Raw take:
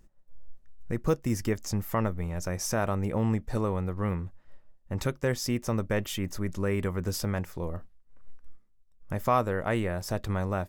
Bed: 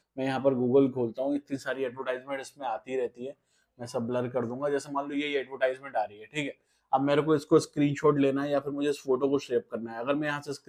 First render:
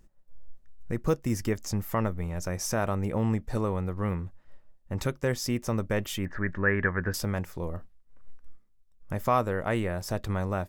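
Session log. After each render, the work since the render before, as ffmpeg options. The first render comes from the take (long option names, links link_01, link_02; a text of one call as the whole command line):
ffmpeg -i in.wav -filter_complex "[0:a]asettb=1/sr,asplit=3[link_01][link_02][link_03];[link_01]atrim=end=6.254[link_04];[link_02]atrim=start=6.25:end=7.14,asetpts=PTS-STARTPTS,afade=type=in:duration=0.004:curve=qsin,afade=type=out:start_time=0.886:duration=0.004:curve=qsin,lowpass=frequency=1700:width_type=q:width=11[link_05];[link_03]atrim=start=7.136[link_06];[link_04][link_05]acrossfade=duration=0.004:curve1=hsin:curve2=qsin[link_07];[link_07][link_06]acrossfade=duration=0.004:curve1=qsin:curve2=hsin" out.wav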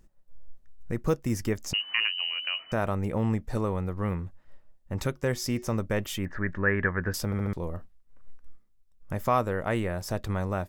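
ffmpeg -i in.wav -filter_complex "[0:a]asettb=1/sr,asplit=3[link_01][link_02][link_03];[link_01]atrim=end=1.734[link_04];[link_02]atrim=start=1.73:end=2.72,asetpts=PTS-STARTPTS,afade=type=in:duration=0.004:curve=qsin,afade=type=out:start_time=0.986:duration=0.004:curve=qsin,lowpass=frequency=2600:width_type=q:width=0.5098,lowpass=frequency=2600:width_type=q:width=0.6013,lowpass=frequency=2600:width_type=q:width=0.9,lowpass=frequency=2600:width_type=q:width=2.563,afreqshift=-3000[link_05];[link_03]atrim=start=2.716[link_06];[link_04][link_05]acrossfade=duration=0.004:curve1=hsin:curve2=qsin[link_07];[link_07][link_06]acrossfade=duration=0.004:curve1=qsin:curve2=hsin,asettb=1/sr,asplit=3[link_08][link_09][link_10];[link_08]atrim=end=5.114[link_11];[link_09]atrim=start=5.11:end=5.8,asetpts=PTS-STARTPTS,afade=type=in:duration=0.004:curve=qsin,afade=type=out:start_time=0.686:duration=0.004:curve=qsin,bandreject=frequency=366:width_type=h:width=4,bandreject=frequency=732:width_type=h:width=4,bandreject=frequency=1098:width_type=h:width=4,bandreject=frequency=1464:width_type=h:width=4,bandreject=frequency=1830:width_type=h:width=4,bandreject=frequency=2196:width_type=h:width=4,bandreject=frequency=2562:width_type=h:width=4,bandreject=frequency=2928:width_type=h:width=4,bandreject=frequency=3294:width_type=h:width=4,bandreject=frequency=3660:width_type=h:width=4,bandreject=frequency=4026:width_type=h:width=4,bandreject=frequency=4392:width_type=h:width=4,bandreject=frequency=4758:width_type=h:width=4,bandreject=frequency=5124:width_type=h:width=4,bandreject=frequency=5490:width_type=h:width=4,bandreject=frequency=5856:width_type=h:width=4,bandreject=frequency=6222:width_type=h:width=4,bandreject=frequency=6588:width_type=h:width=4,bandreject=frequency=6954:width_type=h:width=4,bandreject=frequency=7320:width_type=h:width=4,bandreject=frequency=7686:width_type=h:width=4[link_12];[link_10]atrim=start=5.796[link_13];[link_11][link_12]acrossfade=duration=0.004:curve1=hsin:curve2=qsin[link_14];[link_14][link_13]acrossfade=duration=0.004:curve1=qsin:curve2=hsin,asplit=5[link_15][link_16][link_17][link_18][link_19];[link_15]atrim=end=7.322[link_20];[link_16]atrim=start=7.248:end=7.322[link_21];[link_17]atrim=start=7.248:end=7.322[link_22];[link_18]atrim=start=7.248:end=7.322[link_23];[link_19]atrim=start=7.528[link_24];[link_20][link_21]acrossfade=duration=0.004:curve1=hsin:curve2=hsin[link_25];[link_25][link_22]acrossfade=duration=0.004:curve1=hsin:curve2=hsin[link_26];[link_26][link_23]acrossfade=duration=0.004:curve1=hsin:curve2=hsin[link_27];[link_27][link_24]acrossfade=duration=0.004:curve1=hsin:curve2=hsin" out.wav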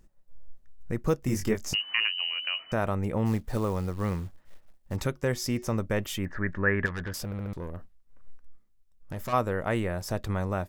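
ffmpeg -i in.wav -filter_complex "[0:a]asettb=1/sr,asplit=3[link_01][link_02][link_03];[link_01]atrim=end=1.204[link_04];[link_02]atrim=start=1.2:end=1.75,asetpts=PTS-STARTPTS,afade=type=in:duration=0.004:curve=qsin,afade=type=out:start_time=0.546:duration=0.004:curve=qsin,asplit=2[link_05][link_06];[link_06]adelay=23,volume=-3.5dB[link_07];[link_05][link_07]amix=inputs=2:normalize=0,atrim=end_sample=24255[link_08];[link_03]atrim=start=1.746[link_09];[link_04][link_08]acrossfade=duration=0.004:curve1=hsin:curve2=qsin[link_10];[link_10][link_09]acrossfade=duration=0.004:curve1=qsin:curve2=hsin,asplit=3[link_11][link_12][link_13];[link_11]afade=type=out:start_time=3.25:duration=0.02[link_14];[link_12]acrusher=bits=6:mode=log:mix=0:aa=0.000001,afade=type=in:start_time=3.25:duration=0.02,afade=type=out:start_time=4.95:duration=0.02[link_15];[link_13]afade=type=in:start_time=4.95:duration=0.02[link_16];[link_14][link_15][link_16]amix=inputs=3:normalize=0,asplit=3[link_17][link_18][link_19];[link_17]afade=type=out:start_time=6.85:duration=0.02[link_20];[link_18]aeval=exprs='(tanh(31.6*val(0)+0.3)-tanh(0.3))/31.6':channel_layout=same,afade=type=in:start_time=6.85:duration=0.02,afade=type=out:start_time=9.32:duration=0.02[link_21];[link_19]afade=type=in:start_time=9.32:duration=0.02[link_22];[link_20][link_21][link_22]amix=inputs=3:normalize=0" out.wav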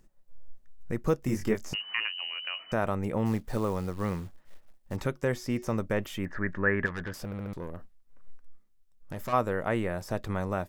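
ffmpeg -i in.wav -filter_complex "[0:a]acrossover=split=2500[link_01][link_02];[link_02]acompressor=threshold=-43dB:ratio=4:attack=1:release=60[link_03];[link_01][link_03]amix=inputs=2:normalize=0,equalizer=frequency=60:width_type=o:width=1.2:gain=-10" out.wav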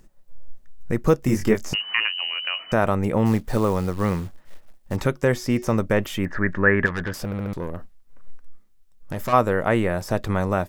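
ffmpeg -i in.wav -af "volume=8.5dB" out.wav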